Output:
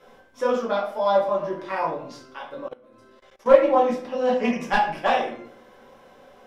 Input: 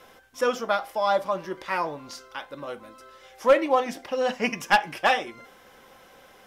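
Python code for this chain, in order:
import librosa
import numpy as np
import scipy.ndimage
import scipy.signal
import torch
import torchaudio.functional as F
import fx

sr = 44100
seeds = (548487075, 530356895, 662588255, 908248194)

y = fx.peak_eq(x, sr, hz=410.0, db=6.5, octaves=2.9)
y = fx.room_shoebox(y, sr, seeds[0], volume_m3=65.0, walls='mixed', distance_m=1.1)
y = fx.level_steps(y, sr, step_db=22, at=(2.68, 3.46))
y = fx.high_shelf(y, sr, hz=9400.0, db=-9.0)
y = fx.doppler_dist(y, sr, depth_ms=0.11)
y = y * librosa.db_to_amplitude(-8.5)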